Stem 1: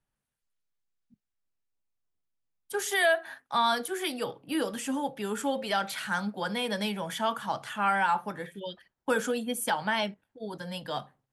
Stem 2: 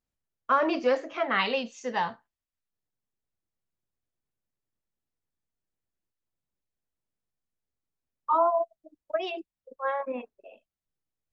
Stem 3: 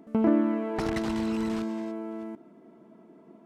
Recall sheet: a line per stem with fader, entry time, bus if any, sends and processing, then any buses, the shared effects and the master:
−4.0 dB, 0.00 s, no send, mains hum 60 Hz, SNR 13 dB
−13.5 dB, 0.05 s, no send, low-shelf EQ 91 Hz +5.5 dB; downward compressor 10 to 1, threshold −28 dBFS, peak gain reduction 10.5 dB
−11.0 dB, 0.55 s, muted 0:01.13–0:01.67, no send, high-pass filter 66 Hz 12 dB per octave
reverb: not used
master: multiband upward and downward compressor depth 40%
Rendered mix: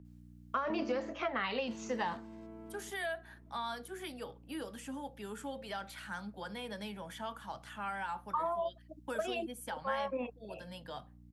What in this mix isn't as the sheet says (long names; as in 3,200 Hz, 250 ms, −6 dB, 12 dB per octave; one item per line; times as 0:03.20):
stem 1 −4.0 dB → −14.5 dB
stem 2 −13.5 dB → −2.0 dB
stem 3 −11.0 dB → −19.0 dB